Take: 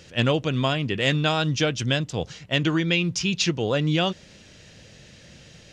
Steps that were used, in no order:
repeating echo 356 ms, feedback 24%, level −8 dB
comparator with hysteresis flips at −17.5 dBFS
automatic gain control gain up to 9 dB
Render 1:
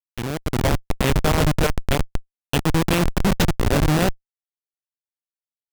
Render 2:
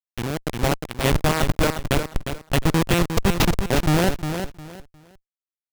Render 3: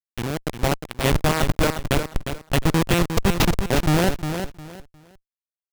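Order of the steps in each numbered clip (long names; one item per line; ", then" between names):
repeating echo, then comparator with hysteresis, then automatic gain control
comparator with hysteresis, then repeating echo, then automatic gain control
comparator with hysteresis, then automatic gain control, then repeating echo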